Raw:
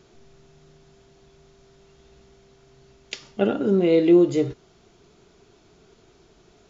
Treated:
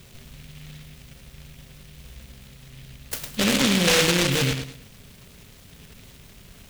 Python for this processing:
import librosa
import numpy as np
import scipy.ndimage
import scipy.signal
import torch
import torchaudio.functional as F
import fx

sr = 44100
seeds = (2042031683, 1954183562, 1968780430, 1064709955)

p1 = fx.bass_treble(x, sr, bass_db=10, treble_db=13)
p2 = p1 + 0.81 * np.pad(p1, (int(1.6 * sr / 1000.0), 0))[:len(p1)]
p3 = fx.tube_stage(p2, sr, drive_db=23.0, bias=0.5)
p4 = fx.small_body(p3, sr, hz=(270.0, 530.0, 2500.0, 3700.0), ring_ms=45, db=12)
p5 = p4 + fx.echo_feedback(p4, sr, ms=106, feedback_pct=32, wet_db=-7, dry=0)
y = fx.noise_mod_delay(p5, sr, seeds[0], noise_hz=2700.0, depth_ms=0.35)